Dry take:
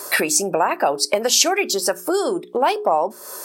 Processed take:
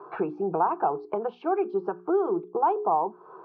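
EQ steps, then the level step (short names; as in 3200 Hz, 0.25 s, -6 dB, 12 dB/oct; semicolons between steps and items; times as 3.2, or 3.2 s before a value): LPF 1700 Hz 24 dB/oct; air absorption 280 m; fixed phaser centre 380 Hz, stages 8; -2.0 dB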